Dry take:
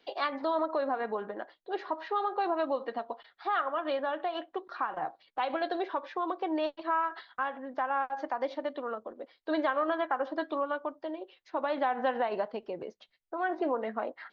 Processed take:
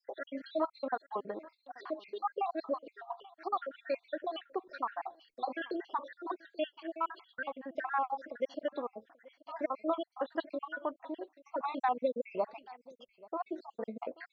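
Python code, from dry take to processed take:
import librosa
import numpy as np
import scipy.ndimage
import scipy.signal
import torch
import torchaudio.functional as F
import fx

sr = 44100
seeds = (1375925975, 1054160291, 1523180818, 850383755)

y = fx.spec_dropout(x, sr, seeds[0], share_pct=69)
y = y + 10.0 ** (-22.0 / 20.0) * np.pad(y, (int(833 * sr / 1000.0), 0))[:len(y)]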